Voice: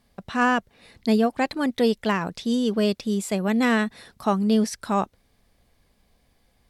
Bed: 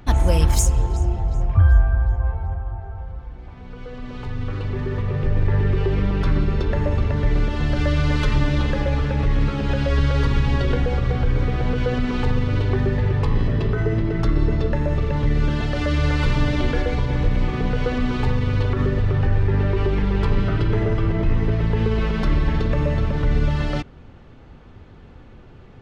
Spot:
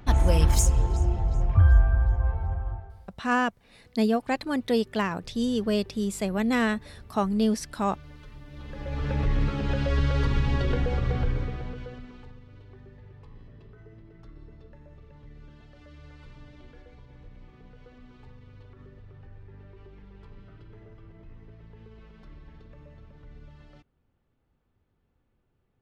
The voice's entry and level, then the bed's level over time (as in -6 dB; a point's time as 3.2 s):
2.90 s, -3.5 dB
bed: 2.72 s -3.5 dB
3.19 s -27.5 dB
8.44 s -27.5 dB
9.11 s -5.5 dB
11.22 s -5.5 dB
12.4 s -29 dB